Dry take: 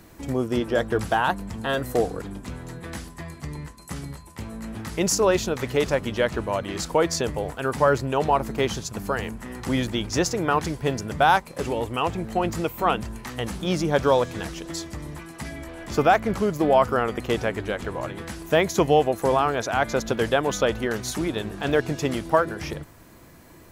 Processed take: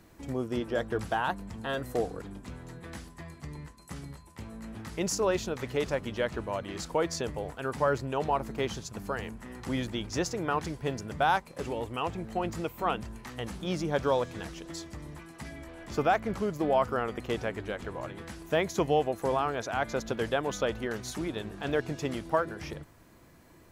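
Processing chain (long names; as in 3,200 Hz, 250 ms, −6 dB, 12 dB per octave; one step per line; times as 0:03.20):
high-shelf EQ 9,300 Hz −5 dB
level −7.5 dB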